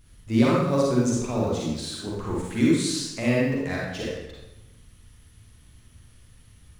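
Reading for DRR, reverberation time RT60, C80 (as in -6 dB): -5.0 dB, 1.0 s, 2.0 dB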